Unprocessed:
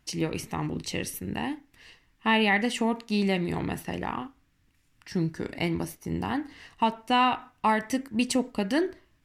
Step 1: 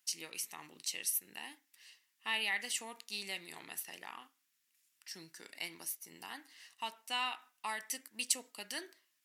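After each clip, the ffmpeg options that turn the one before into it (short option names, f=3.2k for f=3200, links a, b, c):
-af "highpass=120,aderivative,volume=1dB"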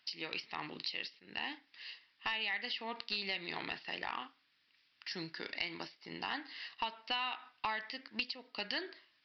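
-af "acompressor=threshold=-43dB:ratio=16,aresample=11025,aeval=exprs='clip(val(0),-1,0.0119)':c=same,aresample=44100,volume=11dB"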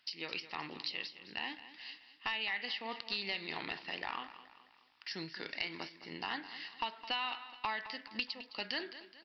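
-af "aecho=1:1:212|424|636|848:0.2|0.0898|0.0404|0.0182"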